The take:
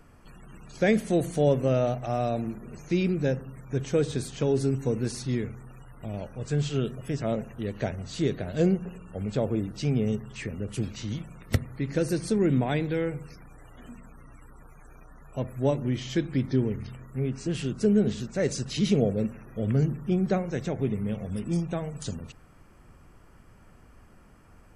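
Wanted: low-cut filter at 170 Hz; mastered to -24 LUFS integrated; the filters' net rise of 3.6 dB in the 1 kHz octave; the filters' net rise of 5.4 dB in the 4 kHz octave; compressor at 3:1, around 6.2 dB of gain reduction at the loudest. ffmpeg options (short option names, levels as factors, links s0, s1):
-af "highpass=170,equalizer=f=1000:t=o:g=5.5,equalizer=f=4000:t=o:g=6.5,acompressor=threshold=0.0501:ratio=3,volume=2.66"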